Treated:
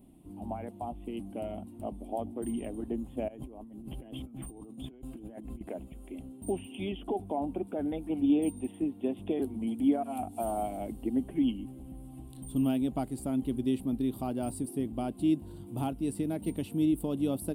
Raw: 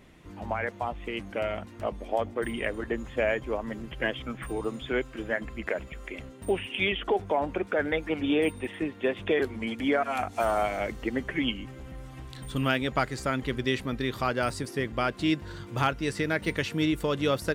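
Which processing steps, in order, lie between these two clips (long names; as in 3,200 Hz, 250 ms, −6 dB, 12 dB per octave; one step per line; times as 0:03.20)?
drawn EQ curve 140 Hz 0 dB, 270 Hz +9 dB, 500 Hz −7 dB, 740 Hz +1 dB, 1,300 Hz −17 dB, 1,800 Hz −24 dB, 2,900 Hz −9 dB, 6,400 Hz −16 dB, 9,100 Hz +9 dB, 15,000 Hz +6 dB
0:03.28–0:05.61: compressor whose output falls as the input rises −40 dBFS, ratio −1
level −5 dB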